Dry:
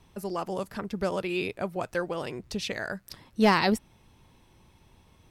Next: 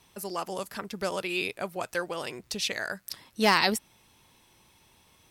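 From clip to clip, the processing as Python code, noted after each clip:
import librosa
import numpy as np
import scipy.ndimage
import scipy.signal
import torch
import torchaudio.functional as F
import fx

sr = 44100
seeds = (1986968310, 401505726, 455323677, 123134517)

y = fx.tilt_eq(x, sr, slope=2.5)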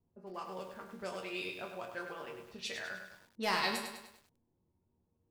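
y = fx.resonator_bank(x, sr, root=39, chord='minor', decay_s=0.3)
y = fx.env_lowpass(y, sr, base_hz=360.0, full_db=-36.5)
y = fx.echo_crushed(y, sr, ms=101, feedback_pct=55, bits=10, wet_db=-6.5)
y = y * librosa.db_to_amplitude(1.0)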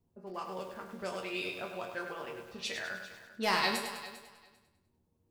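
y = fx.echo_feedback(x, sr, ms=397, feedback_pct=16, wet_db=-16.5)
y = y * librosa.db_to_amplitude(3.0)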